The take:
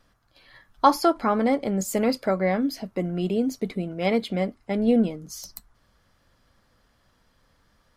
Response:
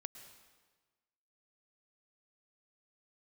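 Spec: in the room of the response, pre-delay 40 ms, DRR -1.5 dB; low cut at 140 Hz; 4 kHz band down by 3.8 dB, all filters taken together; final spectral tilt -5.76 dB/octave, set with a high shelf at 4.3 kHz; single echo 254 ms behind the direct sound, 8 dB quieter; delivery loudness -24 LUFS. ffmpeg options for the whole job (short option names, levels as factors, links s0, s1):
-filter_complex "[0:a]highpass=140,equalizer=f=4000:t=o:g=-7,highshelf=f=4300:g=3,aecho=1:1:254:0.398,asplit=2[s0][s1];[1:a]atrim=start_sample=2205,adelay=40[s2];[s1][s2]afir=irnorm=-1:irlink=0,volume=1.88[s3];[s0][s3]amix=inputs=2:normalize=0,volume=0.708"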